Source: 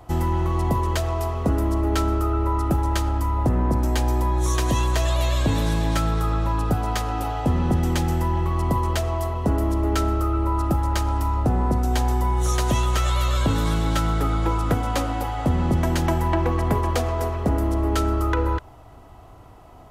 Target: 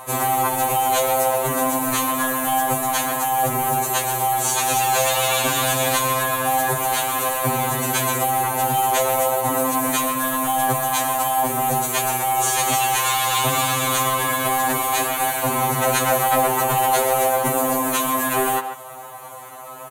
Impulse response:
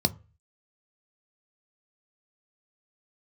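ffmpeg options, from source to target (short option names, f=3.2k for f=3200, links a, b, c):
-filter_complex "[0:a]acrossover=split=7800[a][b];[b]acompressor=threshold=-50dB:ratio=4:attack=1:release=60[c];[a][c]amix=inputs=2:normalize=0,asplit=3[d][e][f];[e]asetrate=35002,aresample=44100,atempo=1.25992,volume=-3dB[g];[f]asetrate=58866,aresample=44100,atempo=0.749154,volume=-8dB[h];[d][g][h]amix=inputs=3:normalize=0,highpass=500,aemphasis=mode=reproduction:type=50fm,asoftclip=type=tanh:threshold=-21.5dB,acrusher=bits=6:mode=log:mix=0:aa=0.000001,aexciter=amount=5.8:drive=8.9:freq=7k,asplit=2[i][j];[1:a]atrim=start_sample=2205,highshelf=f=8.5k:g=7.5[k];[j][k]afir=irnorm=-1:irlink=0,volume=-20dB[l];[i][l]amix=inputs=2:normalize=0,aresample=32000,aresample=44100,asplit=2[m][n];[n]adelay=140,highpass=300,lowpass=3.4k,asoftclip=type=hard:threshold=-22dB,volume=-11dB[o];[m][o]amix=inputs=2:normalize=0,alimiter=level_in=20.5dB:limit=-1dB:release=50:level=0:latency=1,afftfilt=real='re*2.45*eq(mod(b,6),0)':imag='im*2.45*eq(mod(b,6),0)':win_size=2048:overlap=0.75,volume=-5.5dB"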